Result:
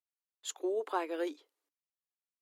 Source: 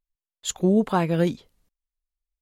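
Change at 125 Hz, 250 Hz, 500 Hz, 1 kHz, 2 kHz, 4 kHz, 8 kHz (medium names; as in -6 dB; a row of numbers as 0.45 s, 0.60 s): under -40 dB, -18.0 dB, -10.0 dB, -9.5 dB, -9.5 dB, -11.0 dB, -11.5 dB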